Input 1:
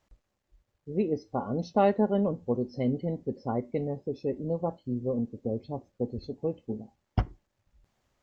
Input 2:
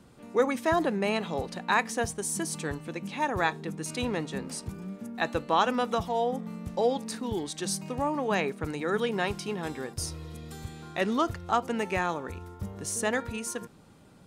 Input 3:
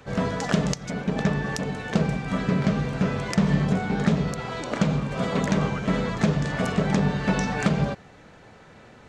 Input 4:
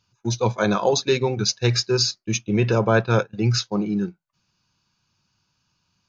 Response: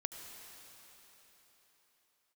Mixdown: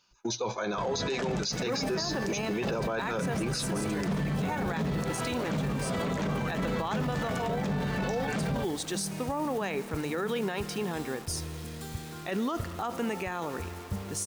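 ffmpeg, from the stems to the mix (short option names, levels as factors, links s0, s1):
-filter_complex "[0:a]volume=0.251[s0];[1:a]acrusher=bits=7:mix=0:aa=0.000001,adelay=1300,volume=1,asplit=2[s1][s2];[s2]volume=0.299[s3];[2:a]adelay=700,volume=1[s4];[3:a]highpass=310,volume=1.33,asplit=2[s5][s6];[s6]volume=0.141[s7];[4:a]atrim=start_sample=2205[s8];[s3][s7]amix=inputs=2:normalize=0[s9];[s9][s8]afir=irnorm=-1:irlink=0[s10];[s0][s1][s4][s5][s10]amix=inputs=5:normalize=0,alimiter=limit=0.0708:level=0:latency=1:release=24"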